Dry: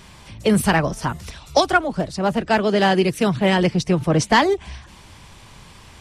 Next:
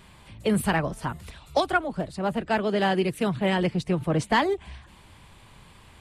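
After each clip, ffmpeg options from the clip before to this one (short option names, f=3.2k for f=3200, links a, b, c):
-af "equalizer=f=5.7k:w=2.8:g=-11,volume=-6.5dB"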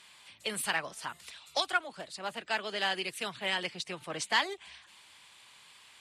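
-af "bandpass=f=5.2k:t=q:w=0.61:csg=0,volume=3dB"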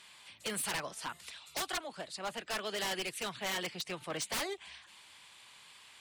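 -af "aeval=exprs='0.0335*(abs(mod(val(0)/0.0335+3,4)-2)-1)':c=same"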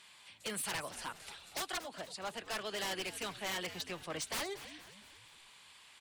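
-filter_complex "[0:a]asplit=6[a][b][c][d][e][f];[b]adelay=234,afreqshift=-96,volume=-14dB[g];[c]adelay=468,afreqshift=-192,volume=-20.4dB[h];[d]adelay=702,afreqshift=-288,volume=-26.8dB[i];[e]adelay=936,afreqshift=-384,volume=-33.1dB[j];[f]adelay=1170,afreqshift=-480,volume=-39.5dB[k];[a][g][h][i][j][k]amix=inputs=6:normalize=0,volume=-2.5dB"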